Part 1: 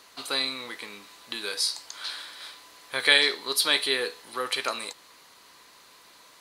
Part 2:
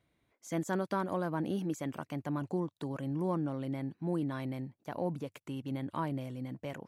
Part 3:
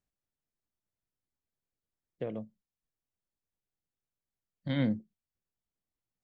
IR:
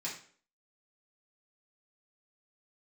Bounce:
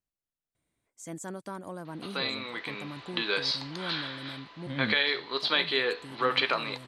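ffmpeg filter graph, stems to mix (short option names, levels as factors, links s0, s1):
-filter_complex "[0:a]lowpass=f=3800:w=0.5412,lowpass=f=3800:w=1.3066,dynaudnorm=f=120:g=13:m=2.66,adelay=1850,volume=0.708[s0];[1:a]equalizer=f=8300:t=o:w=0.72:g=15,adelay=550,volume=0.473[s1];[2:a]volume=0.562,asplit=2[s2][s3];[s3]apad=whole_len=327519[s4];[s1][s4]sidechaincompress=threshold=0.00224:ratio=8:attack=16:release=294[s5];[s0][s5][s2]amix=inputs=3:normalize=0,alimiter=limit=0.224:level=0:latency=1:release=341"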